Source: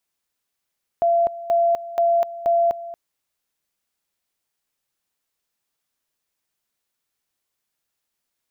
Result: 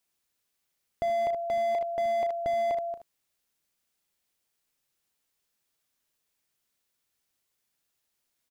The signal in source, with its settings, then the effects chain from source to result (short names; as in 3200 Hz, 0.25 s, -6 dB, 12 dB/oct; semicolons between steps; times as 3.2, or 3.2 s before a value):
two-level tone 682 Hz -14.5 dBFS, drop 16 dB, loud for 0.25 s, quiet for 0.23 s, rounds 4
bell 990 Hz -2.5 dB 1.6 oct; early reflections 35 ms -13 dB, 62 ms -16.5 dB, 76 ms -10.5 dB; slew limiter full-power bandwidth 35 Hz